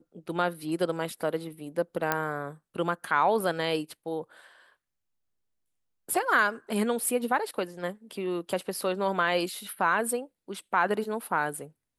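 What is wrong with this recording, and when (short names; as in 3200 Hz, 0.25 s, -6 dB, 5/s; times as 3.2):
2.12 pop -10 dBFS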